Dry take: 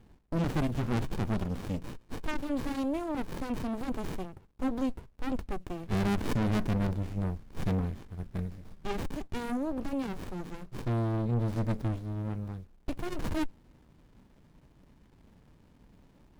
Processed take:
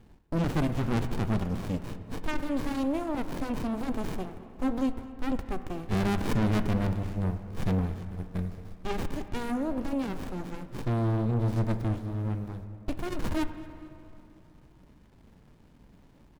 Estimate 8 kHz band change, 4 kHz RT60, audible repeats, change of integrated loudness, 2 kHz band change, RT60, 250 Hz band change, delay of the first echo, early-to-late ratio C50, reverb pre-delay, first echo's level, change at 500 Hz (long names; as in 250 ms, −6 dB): +2.0 dB, 1.7 s, 2, +2.5 dB, +2.5 dB, 2.9 s, +2.5 dB, 226 ms, 10.5 dB, 18 ms, −21.5 dB, +2.5 dB